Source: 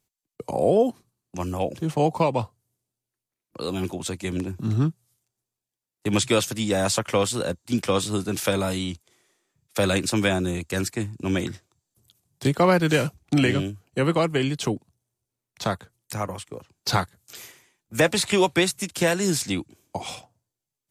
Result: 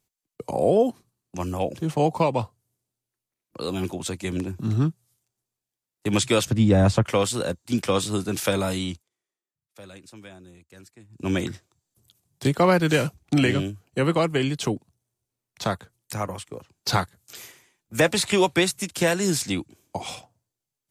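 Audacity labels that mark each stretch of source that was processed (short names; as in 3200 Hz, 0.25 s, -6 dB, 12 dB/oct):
6.450000	7.060000	RIAA curve playback
8.920000	11.260000	dip -22.5 dB, fades 0.17 s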